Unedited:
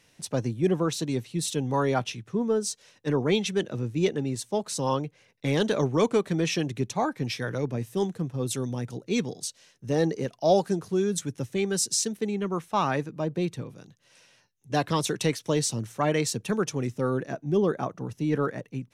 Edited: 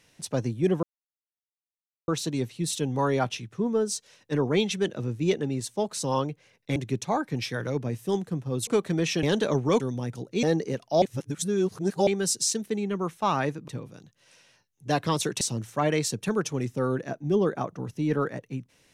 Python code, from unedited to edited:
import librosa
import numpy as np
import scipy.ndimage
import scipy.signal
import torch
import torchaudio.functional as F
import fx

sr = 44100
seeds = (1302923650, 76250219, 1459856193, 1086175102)

y = fx.edit(x, sr, fx.insert_silence(at_s=0.83, length_s=1.25),
    fx.swap(start_s=5.51, length_s=0.57, other_s=6.64, other_length_s=1.91),
    fx.cut(start_s=9.18, length_s=0.76),
    fx.reverse_span(start_s=10.53, length_s=1.05),
    fx.cut(start_s=13.19, length_s=0.33),
    fx.cut(start_s=15.25, length_s=0.38), tone=tone)